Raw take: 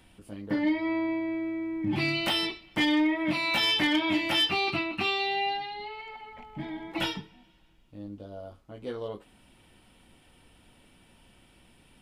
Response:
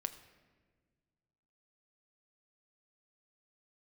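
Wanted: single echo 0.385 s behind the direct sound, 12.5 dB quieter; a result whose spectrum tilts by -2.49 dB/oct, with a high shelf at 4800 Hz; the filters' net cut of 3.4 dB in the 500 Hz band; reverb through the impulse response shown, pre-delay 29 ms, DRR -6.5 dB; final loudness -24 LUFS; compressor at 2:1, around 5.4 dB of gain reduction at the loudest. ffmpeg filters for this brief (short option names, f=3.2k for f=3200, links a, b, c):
-filter_complex "[0:a]equalizer=f=500:t=o:g=-5.5,highshelf=f=4.8k:g=-4.5,acompressor=threshold=-33dB:ratio=2,aecho=1:1:385:0.237,asplit=2[a][b];[1:a]atrim=start_sample=2205,adelay=29[c];[b][c]afir=irnorm=-1:irlink=0,volume=7.5dB[d];[a][d]amix=inputs=2:normalize=0,volume=2.5dB"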